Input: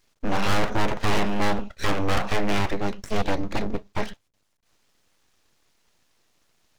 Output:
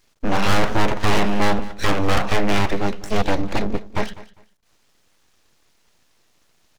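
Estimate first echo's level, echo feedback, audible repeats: -18.0 dB, 22%, 2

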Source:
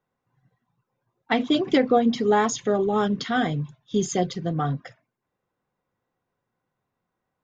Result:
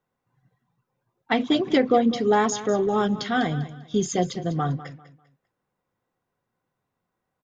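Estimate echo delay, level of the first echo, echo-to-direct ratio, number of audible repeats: 0.198 s, -15.0 dB, -14.5 dB, 2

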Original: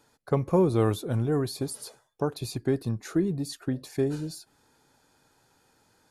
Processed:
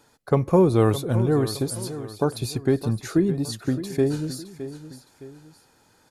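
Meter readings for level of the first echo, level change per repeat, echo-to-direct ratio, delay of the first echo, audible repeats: -13.0 dB, -7.5 dB, -12.5 dB, 0.614 s, 2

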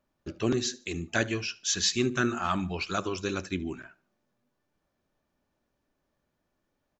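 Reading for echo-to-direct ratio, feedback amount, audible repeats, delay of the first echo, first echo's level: -21.5 dB, 34%, 2, 74 ms, -22.0 dB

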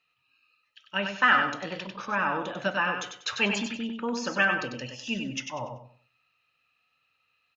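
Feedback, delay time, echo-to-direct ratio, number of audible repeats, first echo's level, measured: 28%, 96 ms, -5.5 dB, 3, -6.0 dB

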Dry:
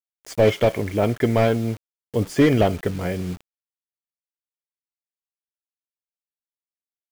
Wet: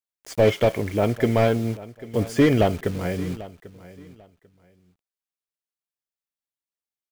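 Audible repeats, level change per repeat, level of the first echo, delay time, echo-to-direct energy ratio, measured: 2, -13.0 dB, -18.0 dB, 0.793 s, -18.0 dB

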